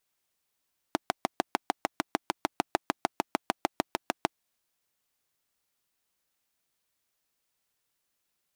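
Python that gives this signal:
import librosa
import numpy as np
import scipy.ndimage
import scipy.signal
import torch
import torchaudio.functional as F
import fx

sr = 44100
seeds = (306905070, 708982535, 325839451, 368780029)

y = fx.engine_single(sr, seeds[0], length_s=3.37, rpm=800, resonances_hz=(320.0, 730.0))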